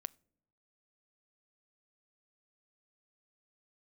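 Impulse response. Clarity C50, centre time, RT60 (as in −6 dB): 27.0 dB, 1 ms, non-exponential decay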